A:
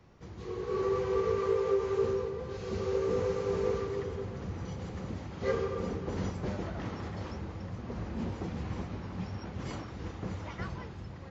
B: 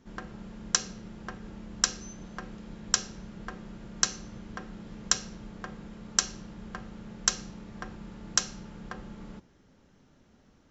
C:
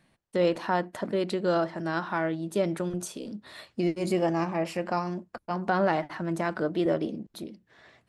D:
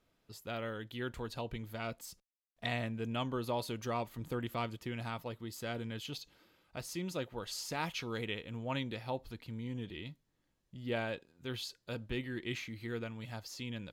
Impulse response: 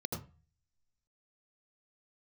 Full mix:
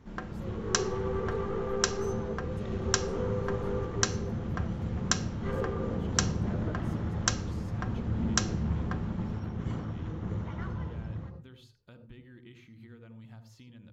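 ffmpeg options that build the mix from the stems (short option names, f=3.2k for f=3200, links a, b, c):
-filter_complex "[0:a]aeval=exprs='(tanh(25.1*val(0)+0.4)-tanh(0.4))/25.1':c=same,volume=0.5dB,asplit=2[a][b];[b]volume=-6.5dB[c];[1:a]volume=2.5dB[d];[2:a]adelay=50,volume=-14.5dB[e];[3:a]acompressor=threshold=-48dB:ratio=4,volume=-3dB,asplit=3[f][g][h];[g]volume=-11.5dB[i];[h]apad=whole_len=358963[j];[e][j]sidechaincompress=threshold=-60dB:ratio=8:attack=16:release=727[k];[4:a]atrim=start_sample=2205[l];[c][i]amix=inputs=2:normalize=0[m];[m][l]afir=irnorm=-1:irlink=0[n];[a][d][k][f][n]amix=inputs=5:normalize=0,highshelf=f=3.4k:g=-8.5"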